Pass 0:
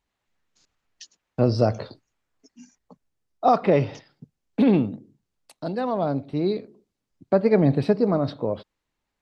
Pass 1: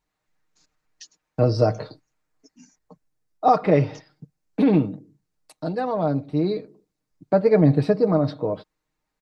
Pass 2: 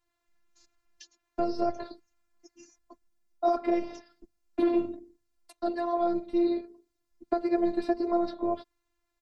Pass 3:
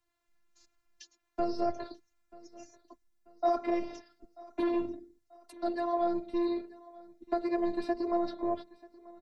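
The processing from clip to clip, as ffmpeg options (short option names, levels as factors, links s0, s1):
-af "equalizer=f=3100:t=o:w=0.52:g=-5.5,aecho=1:1:6.5:0.58"
-filter_complex "[0:a]acrossover=split=400|1600|3900[s0][s1][s2][s3];[s0]acompressor=threshold=0.0562:ratio=4[s4];[s1]acompressor=threshold=0.0501:ratio=4[s5];[s2]acompressor=threshold=0.00224:ratio=4[s6];[s3]acompressor=threshold=0.002:ratio=4[s7];[s4][s5][s6][s7]amix=inputs=4:normalize=0,afftfilt=real='hypot(re,im)*cos(PI*b)':imag='0':win_size=512:overlap=0.75,volume=1.33"
-filter_complex "[0:a]acrossover=split=120|570[s0][s1][s2];[s1]asoftclip=type=tanh:threshold=0.0473[s3];[s0][s3][s2]amix=inputs=3:normalize=0,aecho=1:1:937|1874|2811:0.0794|0.0342|0.0147,volume=0.841"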